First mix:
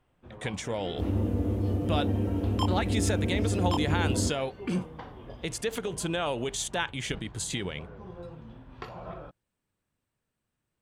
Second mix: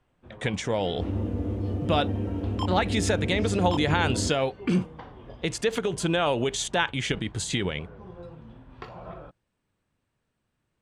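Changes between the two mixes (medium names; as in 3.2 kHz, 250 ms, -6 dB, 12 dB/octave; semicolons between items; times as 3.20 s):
speech +6.0 dB; second sound: send off; master: add distance through air 52 m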